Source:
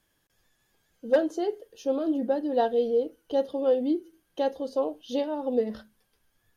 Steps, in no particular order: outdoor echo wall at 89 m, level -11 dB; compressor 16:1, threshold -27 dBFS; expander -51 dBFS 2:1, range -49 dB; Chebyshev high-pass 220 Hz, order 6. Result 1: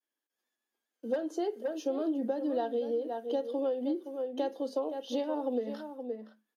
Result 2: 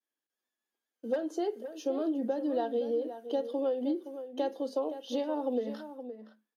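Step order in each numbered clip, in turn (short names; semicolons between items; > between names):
expander > outdoor echo > compressor > Chebyshev high-pass; Chebyshev high-pass > expander > compressor > outdoor echo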